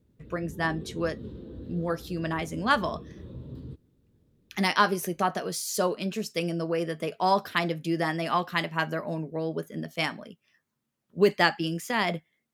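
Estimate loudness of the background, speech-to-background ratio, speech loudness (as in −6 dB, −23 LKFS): −43.5 LKFS, 15.0 dB, −28.5 LKFS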